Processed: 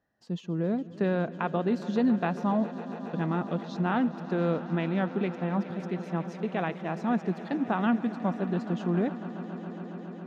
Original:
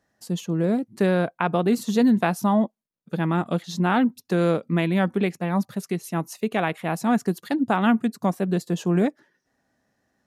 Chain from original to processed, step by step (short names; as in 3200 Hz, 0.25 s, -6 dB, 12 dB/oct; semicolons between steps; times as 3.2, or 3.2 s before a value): air absorption 180 m; notch 2200 Hz, Q 17; swelling echo 0.138 s, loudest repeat 5, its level -18 dB; gain -6 dB